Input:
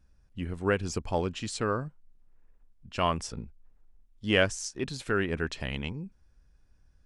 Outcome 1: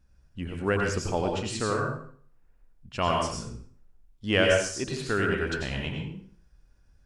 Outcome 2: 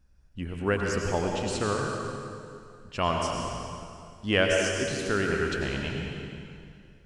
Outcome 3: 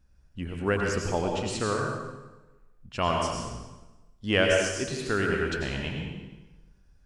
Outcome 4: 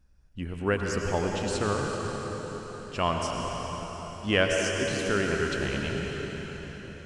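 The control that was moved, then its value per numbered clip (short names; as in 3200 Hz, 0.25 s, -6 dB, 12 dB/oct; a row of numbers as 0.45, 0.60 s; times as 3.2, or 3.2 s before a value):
plate-style reverb, RT60: 0.52, 2.4, 1.1, 5.3 s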